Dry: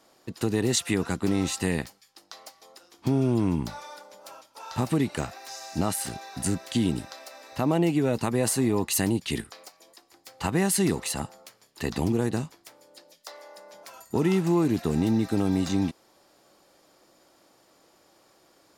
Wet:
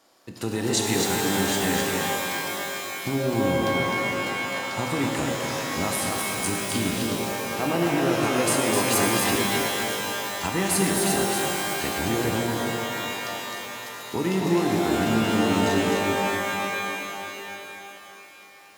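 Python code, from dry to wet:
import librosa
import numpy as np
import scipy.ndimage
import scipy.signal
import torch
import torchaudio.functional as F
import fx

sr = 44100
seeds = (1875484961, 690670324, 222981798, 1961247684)

y = fx.low_shelf(x, sr, hz=340.0, db=-6.5)
y = y + 10.0 ** (-4.5 / 20.0) * np.pad(y, (int(258 * sr / 1000.0), 0))[:len(y)]
y = fx.rev_shimmer(y, sr, seeds[0], rt60_s=3.4, semitones=12, shimmer_db=-2, drr_db=1.0)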